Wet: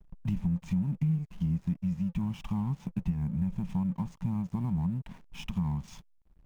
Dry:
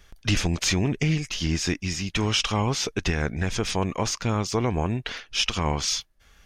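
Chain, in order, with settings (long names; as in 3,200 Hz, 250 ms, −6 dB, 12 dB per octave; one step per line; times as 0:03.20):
floating-point word with a short mantissa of 2 bits
drawn EQ curve 110 Hz 0 dB, 180 Hz +14 dB, 460 Hz −28 dB, 930 Hz +2 dB, 1,400 Hz −17 dB, 2,400 Hz −13 dB, 4,600 Hz −27 dB, 7,900 Hz −16 dB
downward compressor 3 to 1, threshold −30 dBFS, peak gain reduction 14 dB
dynamic equaliser 1,400 Hz, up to −7 dB, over −54 dBFS, Q 0.78
slack as between gear wheels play −46.5 dBFS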